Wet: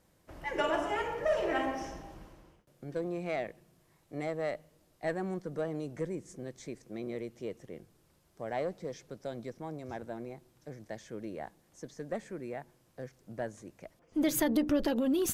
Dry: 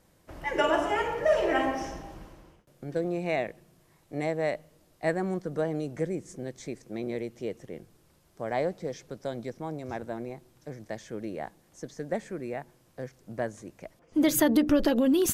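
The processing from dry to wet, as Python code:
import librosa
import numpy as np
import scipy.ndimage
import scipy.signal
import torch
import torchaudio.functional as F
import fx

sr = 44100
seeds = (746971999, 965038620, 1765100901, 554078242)

y = fx.diode_clip(x, sr, knee_db=-16.0)
y = F.gain(torch.from_numpy(y), -4.5).numpy()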